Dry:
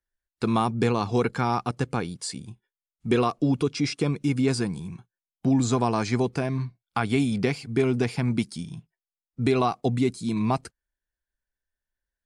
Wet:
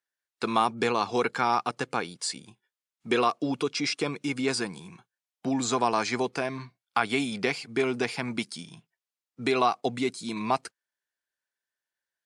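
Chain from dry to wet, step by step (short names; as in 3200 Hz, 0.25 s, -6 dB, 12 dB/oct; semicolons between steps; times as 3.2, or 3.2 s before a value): weighting filter A; gain +2 dB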